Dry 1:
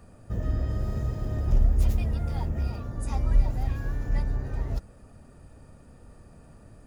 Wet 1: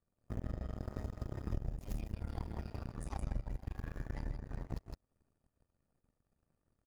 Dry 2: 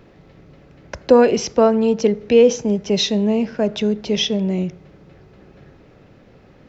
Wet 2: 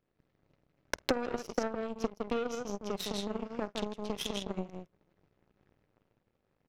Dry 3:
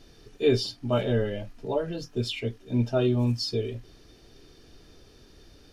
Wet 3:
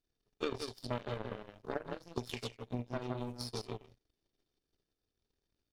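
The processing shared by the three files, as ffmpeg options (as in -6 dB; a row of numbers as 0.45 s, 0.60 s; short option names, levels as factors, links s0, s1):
-af "aecho=1:1:49.56|160.3:0.282|0.631,acompressor=threshold=0.0355:ratio=6,aeval=exprs='0.224*(cos(1*acos(clip(val(0)/0.224,-1,1)))-cos(1*PI/2))+0.0316*(cos(7*acos(clip(val(0)/0.224,-1,1)))-cos(7*PI/2))+0.00251*(cos(8*acos(clip(val(0)/0.224,-1,1)))-cos(8*PI/2))':c=same,volume=1.19"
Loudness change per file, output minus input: -14.5 LU, -19.0 LU, -14.0 LU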